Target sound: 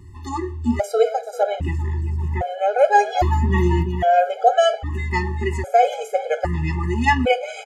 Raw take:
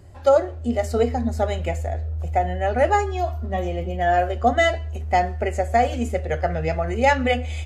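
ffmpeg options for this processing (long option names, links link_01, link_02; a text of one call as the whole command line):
ffmpeg -i in.wav -filter_complex "[0:a]asettb=1/sr,asplit=3[link_01][link_02][link_03];[link_01]atrim=end=1.434[link_04];[link_02]atrim=start=1.43:end=2.41,asetpts=PTS-STARTPTS,afade=type=in:duration=0.004:curve=qsin,afade=type=out:start_time=0.976:duration=0.004:curve=qsin,acrossover=split=3200[link_05][link_06];[link_06]acompressor=threshold=-59dB:ratio=4:attack=1:release=60[link_07];[link_05][link_07]amix=inputs=2:normalize=0[link_08];[link_03]atrim=start=2.406[link_09];[link_04][link_08]acrossfade=duration=0.004:curve1=hsin:curve2=qsin[link_10];[link_10][link_09]acrossfade=duration=0.004:curve1=qsin:curve2=hsin,asplit=7[link_11][link_12][link_13][link_14][link_15][link_16][link_17];[link_12]adelay=392,afreqshift=51,volume=-16dB[link_18];[link_13]adelay=784,afreqshift=102,volume=-20.3dB[link_19];[link_14]adelay=1176,afreqshift=153,volume=-24.6dB[link_20];[link_15]adelay=1568,afreqshift=204,volume=-28.9dB[link_21];[link_16]adelay=1960,afreqshift=255,volume=-33.2dB[link_22];[link_17]adelay=2352,afreqshift=306,volume=-37.5dB[link_23];[link_11][link_18][link_19][link_20][link_21][link_22][link_23]amix=inputs=7:normalize=0,asplit=3[link_24][link_25][link_26];[link_24]afade=type=out:start_time=2.94:duration=0.02[link_27];[link_25]acontrast=50,afade=type=in:start_time=2.94:duration=0.02,afade=type=out:start_time=3.82:duration=0.02[link_28];[link_26]afade=type=in:start_time=3.82:duration=0.02[link_29];[link_27][link_28][link_29]amix=inputs=3:normalize=0,afftfilt=real='re*gt(sin(2*PI*0.62*pts/sr)*(1-2*mod(floor(b*sr/1024/420),2)),0)':imag='im*gt(sin(2*PI*0.62*pts/sr)*(1-2*mod(floor(b*sr/1024/420),2)),0)':win_size=1024:overlap=0.75,volume=4dB" out.wav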